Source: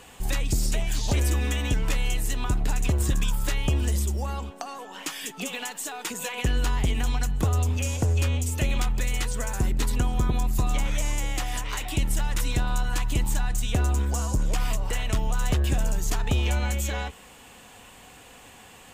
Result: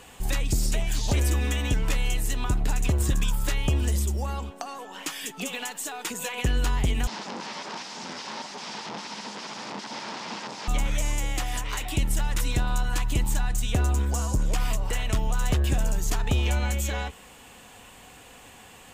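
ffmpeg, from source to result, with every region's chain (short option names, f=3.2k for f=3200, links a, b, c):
-filter_complex "[0:a]asettb=1/sr,asplit=3[a][b][c];[a]atrim=end=7.074[d];[b]atrim=start=7.07:end=10.68,asetpts=PTS-STARTPTS,afade=t=in:d=0.004:c=qsin,afade=t=out:st=3.606:d=0.004:c=qsin,aeval=exprs='(mod(39.8*val(0)+1,2)-1)/39.8':c=same,highpass=f=160:w=0.5412,highpass=f=160:w=1.3066,equalizer=f=210:t=q:w=4:g=9,equalizer=f=910:t=q:w=4:g=10,equalizer=f=5.1k:t=q:w=4:g=5,lowpass=f=6.1k:w=0.5412,lowpass=f=6.1k:w=1.3066[e];[c]atrim=start=10.676[f];[d][e]acrossfade=d=0.004:c1=hsin:c2=qsin[g];[g][f]acrossfade=d=0.004:c1=qsin:c2=hsin"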